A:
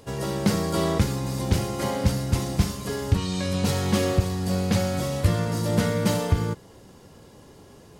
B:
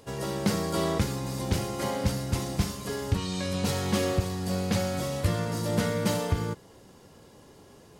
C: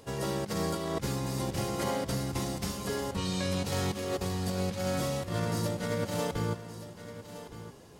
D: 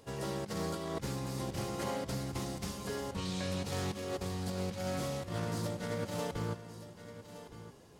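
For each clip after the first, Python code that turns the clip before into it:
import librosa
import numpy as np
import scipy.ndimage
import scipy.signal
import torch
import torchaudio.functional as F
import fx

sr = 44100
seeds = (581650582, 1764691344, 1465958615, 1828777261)

y1 = fx.low_shelf(x, sr, hz=190.0, db=-4.0)
y1 = F.gain(torch.from_numpy(y1), -2.5).numpy()
y2 = fx.over_compress(y1, sr, threshold_db=-29.0, ratio=-0.5)
y2 = y2 + 10.0 ** (-13.0 / 20.0) * np.pad(y2, (int(1166 * sr / 1000.0), 0))[:len(y2)]
y2 = F.gain(torch.from_numpy(y2), -2.0).numpy()
y3 = fx.doppler_dist(y2, sr, depth_ms=0.16)
y3 = F.gain(torch.from_numpy(y3), -5.0).numpy()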